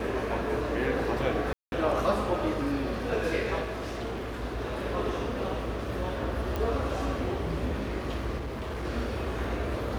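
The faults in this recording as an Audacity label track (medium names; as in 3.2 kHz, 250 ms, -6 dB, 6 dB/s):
1.530000	1.720000	dropout 191 ms
3.630000	4.440000	clipped -30.5 dBFS
6.560000	6.560000	pop -18 dBFS
8.390000	8.860000	clipped -31 dBFS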